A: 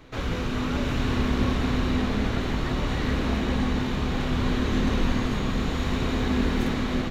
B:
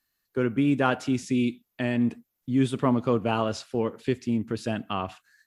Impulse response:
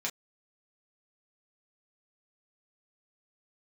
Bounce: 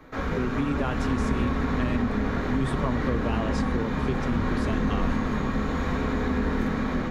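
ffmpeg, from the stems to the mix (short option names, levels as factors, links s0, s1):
-filter_complex "[0:a]highshelf=f=2100:t=q:w=1.5:g=-7.5,volume=0.708,asplit=2[s0][s1];[s1]volume=0.708[s2];[1:a]volume=0.75[s3];[2:a]atrim=start_sample=2205[s4];[s2][s4]afir=irnorm=-1:irlink=0[s5];[s0][s3][s5]amix=inputs=3:normalize=0,acrossover=split=150[s6][s7];[s7]acompressor=threshold=0.0631:ratio=6[s8];[s6][s8]amix=inputs=2:normalize=0"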